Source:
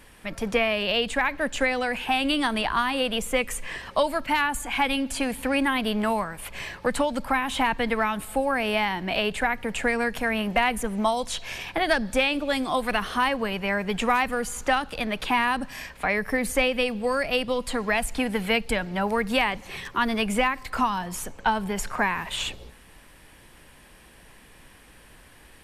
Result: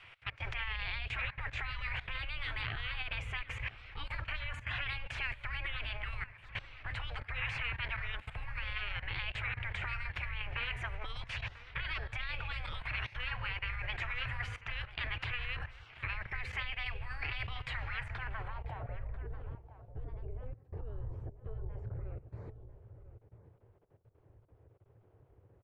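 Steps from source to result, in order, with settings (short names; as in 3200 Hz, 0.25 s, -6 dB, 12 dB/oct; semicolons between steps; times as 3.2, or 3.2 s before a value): spectral gate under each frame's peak -15 dB weak; EQ curve 110 Hz 0 dB, 210 Hz -27 dB, 1500 Hz -16 dB, 12000 Hz -19 dB; level quantiser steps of 19 dB; low-pass sweep 2400 Hz -> 420 Hz, 17.84–19.23; outdoor echo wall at 170 m, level -13 dB; gain +18 dB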